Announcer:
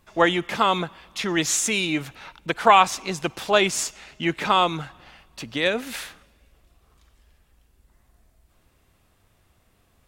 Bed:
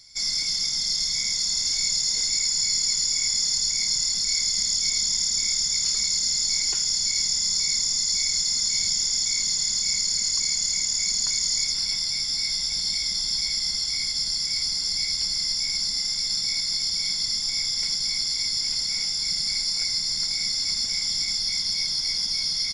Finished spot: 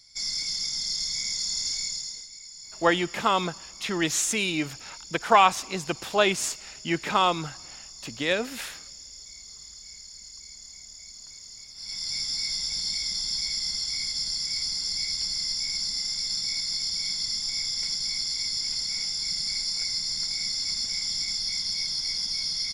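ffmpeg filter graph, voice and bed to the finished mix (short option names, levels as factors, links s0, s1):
-filter_complex "[0:a]adelay=2650,volume=0.708[s0];[1:a]volume=4.22,afade=t=out:st=1.68:d=0.59:silence=0.158489,afade=t=in:st=11.74:d=0.42:silence=0.141254[s1];[s0][s1]amix=inputs=2:normalize=0"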